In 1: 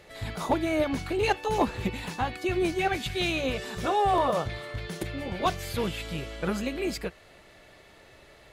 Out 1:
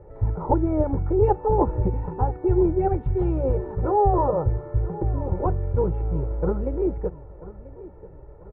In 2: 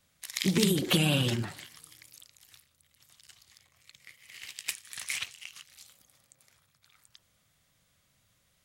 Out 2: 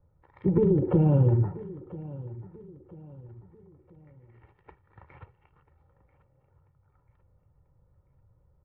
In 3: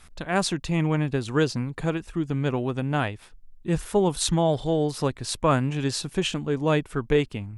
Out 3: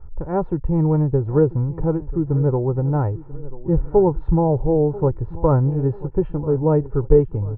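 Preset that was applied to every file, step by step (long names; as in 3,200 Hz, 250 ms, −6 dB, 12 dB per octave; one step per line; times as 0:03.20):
low-pass filter 1,000 Hz 24 dB per octave
low-shelf EQ 200 Hz +11 dB
comb filter 2.2 ms, depth 66%
repeating echo 989 ms, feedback 40%, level −18 dB
level +1.5 dB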